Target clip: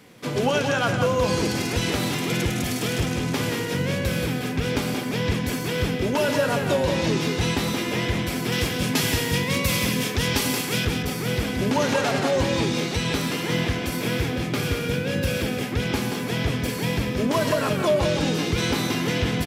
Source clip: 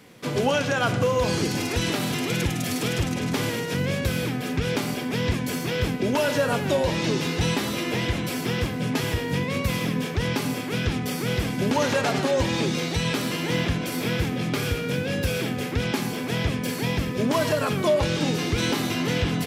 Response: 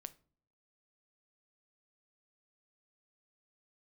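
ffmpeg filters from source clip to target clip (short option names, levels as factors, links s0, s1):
-filter_complex "[0:a]asettb=1/sr,asplit=3[s0][s1][s2];[s0]atrim=end=8.524[s3];[s1]atrim=start=8.52:end=10.85,asetpts=PTS-STARTPTS,afade=t=in:d=0.004:c=qsin,afade=t=out:st=2.326:d=0.004:c=qsin,highshelf=f=2800:g=10.5[s4];[s2]atrim=start=10.846[s5];[s3][s4]acrossfade=d=0.004:c1=hsin:c2=qsin[s6];[s6][s5]acrossfade=d=0.004:c1=qsin:c2=hsin,aecho=1:1:178:0.501"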